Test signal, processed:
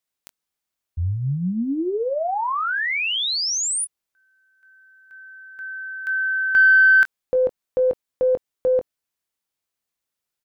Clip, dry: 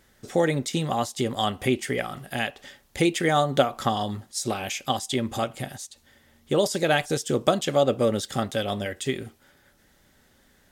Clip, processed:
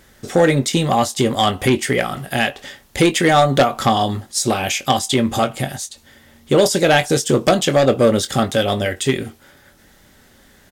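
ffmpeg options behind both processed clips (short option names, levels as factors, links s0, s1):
-filter_complex "[0:a]aeval=exprs='0.596*(cos(1*acos(clip(val(0)/0.596,-1,1)))-cos(1*PI/2))+0.188*(cos(2*acos(clip(val(0)/0.596,-1,1)))-cos(2*PI/2))+0.299*(cos(5*acos(clip(val(0)/0.596,-1,1)))-cos(5*PI/2))':c=same,asplit=2[s0][s1];[s1]adelay=22,volume=0.282[s2];[s0][s2]amix=inputs=2:normalize=0,volume=0.891"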